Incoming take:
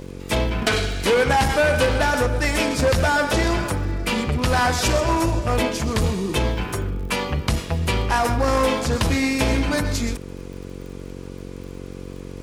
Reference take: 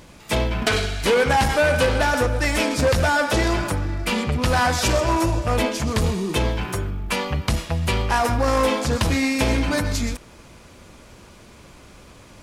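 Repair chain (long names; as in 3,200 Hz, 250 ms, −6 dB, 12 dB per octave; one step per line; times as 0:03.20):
click removal
hum removal 46.2 Hz, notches 11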